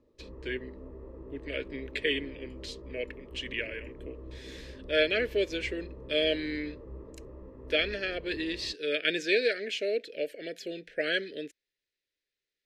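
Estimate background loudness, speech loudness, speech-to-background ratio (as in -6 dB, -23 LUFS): -47.0 LUFS, -31.5 LUFS, 15.5 dB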